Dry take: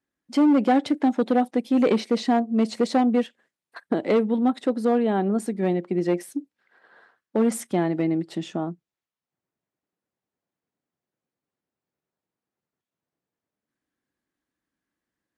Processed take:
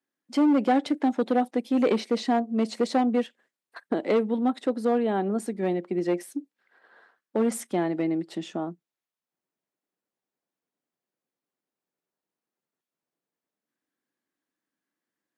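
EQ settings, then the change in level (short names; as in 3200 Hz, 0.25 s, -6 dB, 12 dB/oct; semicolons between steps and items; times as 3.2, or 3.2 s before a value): HPF 200 Hz; -2.0 dB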